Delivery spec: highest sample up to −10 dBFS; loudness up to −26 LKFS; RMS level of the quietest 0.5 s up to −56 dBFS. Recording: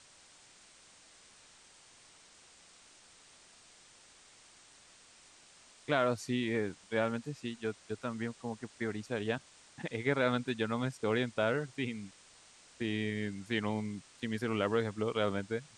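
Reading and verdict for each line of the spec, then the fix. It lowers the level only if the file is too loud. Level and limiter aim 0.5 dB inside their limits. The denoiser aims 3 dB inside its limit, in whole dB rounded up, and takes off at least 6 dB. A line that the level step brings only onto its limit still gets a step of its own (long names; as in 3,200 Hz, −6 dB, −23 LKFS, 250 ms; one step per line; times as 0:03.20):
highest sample −15.0 dBFS: in spec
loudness −35.0 LKFS: in spec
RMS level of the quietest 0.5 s −60 dBFS: in spec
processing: no processing needed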